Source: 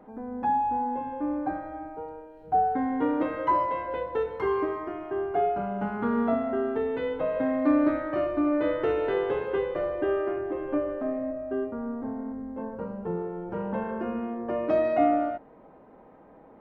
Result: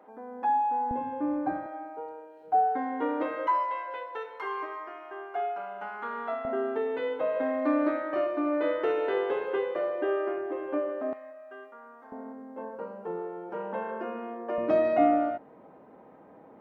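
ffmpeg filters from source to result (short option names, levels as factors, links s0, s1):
-af "asetnsamples=n=441:p=0,asendcmd='0.91 highpass f 110;1.66 highpass f 380;3.47 highpass f 860;6.45 highpass f 350;11.13 highpass f 1200;12.12 highpass f 400;14.58 highpass f 110',highpass=450"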